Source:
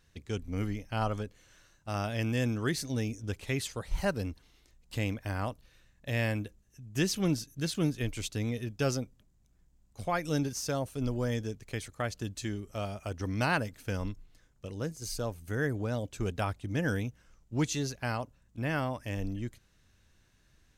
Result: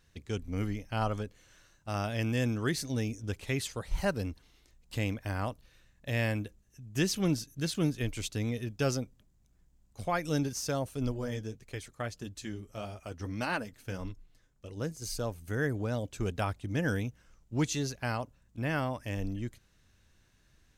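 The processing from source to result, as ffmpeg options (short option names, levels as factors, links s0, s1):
-filter_complex "[0:a]asplit=3[s0][s1][s2];[s0]afade=t=out:st=11.11:d=0.02[s3];[s1]flanger=delay=1.9:depth=7.3:regen=-42:speed=1.7:shape=triangular,afade=t=in:st=11.11:d=0.02,afade=t=out:st=14.76:d=0.02[s4];[s2]afade=t=in:st=14.76:d=0.02[s5];[s3][s4][s5]amix=inputs=3:normalize=0"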